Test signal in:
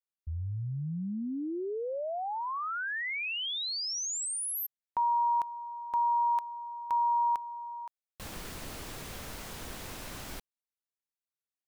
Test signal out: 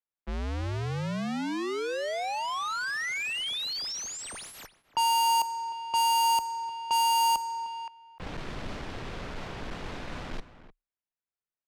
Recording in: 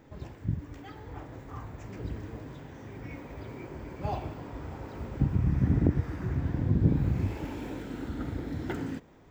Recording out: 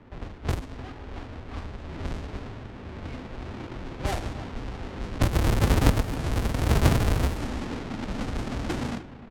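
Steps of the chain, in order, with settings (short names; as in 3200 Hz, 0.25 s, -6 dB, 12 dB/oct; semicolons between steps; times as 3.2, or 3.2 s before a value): half-waves squared off; outdoor echo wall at 52 m, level -14 dB; frequency shift -29 Hz; low-pass opened by the level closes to 2300 Hz, open at -21.5 dBFS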